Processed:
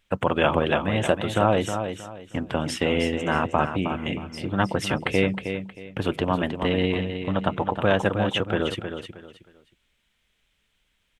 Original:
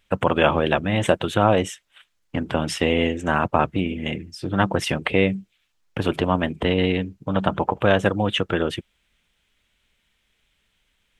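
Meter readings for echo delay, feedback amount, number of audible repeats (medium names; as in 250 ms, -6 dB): 314 ms, 27%, 3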